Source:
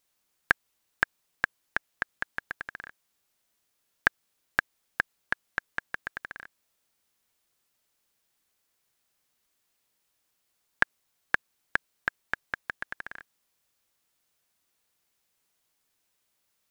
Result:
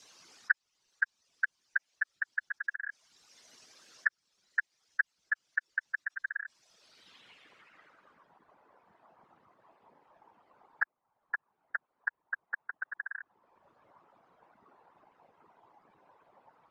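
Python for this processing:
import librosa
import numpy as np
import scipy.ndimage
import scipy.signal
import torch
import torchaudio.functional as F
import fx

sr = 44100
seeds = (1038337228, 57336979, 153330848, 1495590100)

y = fx.spec_expand(x, sr, power=2.7)
y = scipy.signal.sosfilt(scipy.signal.butter(2, 46.0, 'highpass', fs=sr, output='sos'), y)
y = fx.whisperise(y, sr, seeds[0])
y = fx.filter_sweep_lowpass(y, sr, from_hz=5600.0, to_hz=930.0, start_s=6.68, end_s=8.38, q=2.4)
y = fx.band_squash(y, sr, depth_pct=70)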